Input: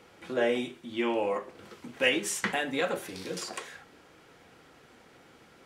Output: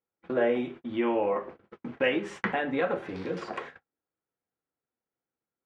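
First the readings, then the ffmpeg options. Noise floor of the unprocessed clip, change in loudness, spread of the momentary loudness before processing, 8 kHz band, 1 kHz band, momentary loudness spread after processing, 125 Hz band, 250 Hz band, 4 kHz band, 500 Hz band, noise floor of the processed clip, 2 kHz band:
-57 dBFS, +0.5 dB, 20 LU, under -20 dB, +2.0 dB, 14 LU, +3.5 dB, +3.0 dB, -7.5 dB, +2.0 dB, under -85 dBFS, -1.5 dB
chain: -filter_complex "[0:a]lowpass=1.8k,agate=range=-43dB:threshold=-46dB:ratio=16:detection=peak,asplit=2[a][b];[b]acompressor=threshold=-38dB:ratio=6,volume=1dB[c];[a][c]amix=inputs=2:normalize=0"

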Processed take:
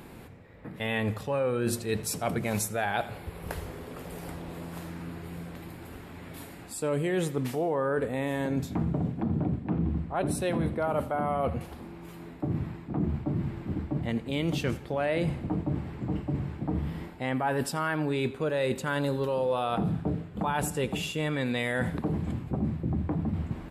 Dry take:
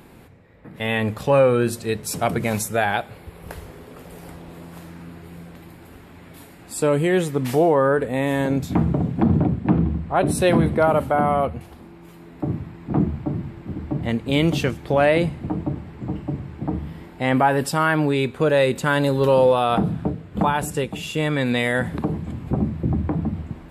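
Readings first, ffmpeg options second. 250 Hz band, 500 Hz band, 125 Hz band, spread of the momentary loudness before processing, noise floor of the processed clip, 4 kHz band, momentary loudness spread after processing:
-8.0 dB, -10.0 dB, -7.0 dB, 21 LU, -45 dBFS, -7.5 dB, 12 LU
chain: -filter_complex "[0:a]areverse,acompressor=threshold=-26dB:ratio=6,areverse,asplit=2[a][b];[b]adelay=84,lowpass=f=4.9k:p=1,volume=-17.5dB,asplit=2[c][d];[d]adelay=84,lowpass=f=4.9k:p=1,volume=0.5,asplit=2[e][f];[f]adelay=84,lowpass=f=4.9k:p=1,volume=0.5,asplit=2[g][h];[h]adelay=84,lowpass=f=4.9k:p=1,volume=0.5[i];[a][c][e][g][i]amix=inputs=5:normalize=0"

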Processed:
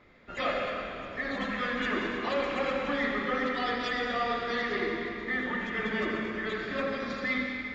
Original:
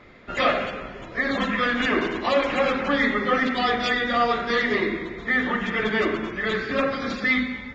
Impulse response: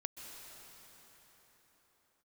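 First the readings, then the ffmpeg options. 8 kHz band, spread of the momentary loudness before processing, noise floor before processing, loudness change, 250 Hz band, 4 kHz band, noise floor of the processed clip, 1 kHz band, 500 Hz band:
n/a, 5 LU, -39 dBFS, -7.5 dB, -8.0 dB, -8.0 dB, -41 dBFS, -8.0 dB, -7.5 dB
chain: -filter_complex "[1:a]atrim=start_sample=2205,asetrate=74970,aresample=44100[a];[0:a][a]afir=irnorm=-1:irlink=0,volume=-1.5dB"

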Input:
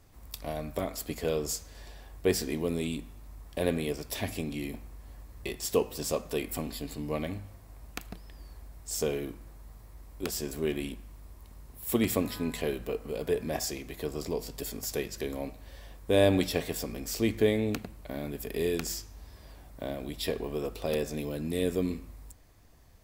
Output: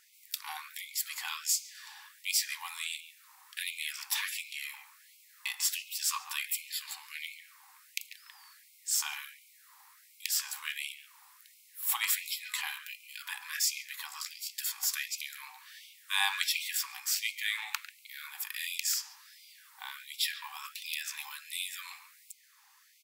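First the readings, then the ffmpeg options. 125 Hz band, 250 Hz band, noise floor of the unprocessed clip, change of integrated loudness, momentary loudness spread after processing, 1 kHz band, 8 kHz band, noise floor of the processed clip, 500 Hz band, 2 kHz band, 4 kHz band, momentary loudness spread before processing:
under -40 dB, under -40 dB, -52 dBFS, -1.5 dB, 18 LU, -1.5 dB, +5.5 dB, -61 dBFS, under -40 dB, +5.0 dB, +5.5 dB, 21 LU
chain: -filter_complex "[0:a]asplit=2[a][b];[b]adelay=140,highpass=300,lowpass=3.4k,asoftclip=type=hard:threshold=-18.5dB,volume=-12dB[c];[a][c]amix=inputs=2:normalize=0,afftfilt=real='re*gte(b*sr/1024,750*pow(2100/750,0.5+0.5*sin(2*PI*1.4*pts/sr)))':imag='im*gte(b*sr/1024,750*pow(2100/750,0.5+0.5*sin(2*PI*1.4*pts/sr)))':win_size=1024:overlap=0.75,volume=5.5dB"

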